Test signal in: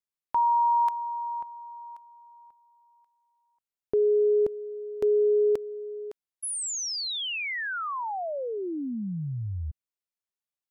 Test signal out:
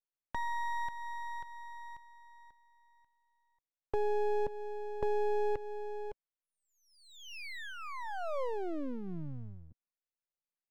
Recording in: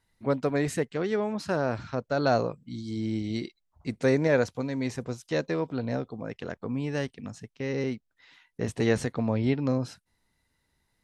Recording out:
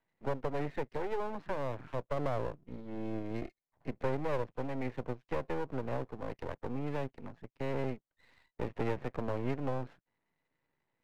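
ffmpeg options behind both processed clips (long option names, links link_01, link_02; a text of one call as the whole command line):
ffmpeg -i in.wav -filter_complex "[0:a]highpass=frequency=130:width=0.5412,highpass=frequency=130:width=1.3066,equalizer=frequency=210:width_type=q:width=4:gain=-5,equalizer=frequency=530:width_type=q:width=4:gain=4,equalizer=frequency=1400:width_type=q:width=4:gain=-7,lowpass=frequency=2100:width=0.5412,lowpass=frequency=2100:width=1.3066,acrossover=split=240|650[link_01][link_02][link_03];[link_01]acompressor=threshold=-36dB:ratio=4[link_04];[link_02]acompressor=threshold=-31dB:ratio=4[link_05];[link_03]acompressor=threshold=-39dB:ratio=4[link_06];[link_04][link_05][link_06]amix=inputs=3:normalize=0,aeval=exprs='max(val(0),0)':channel_layout=same" out.wav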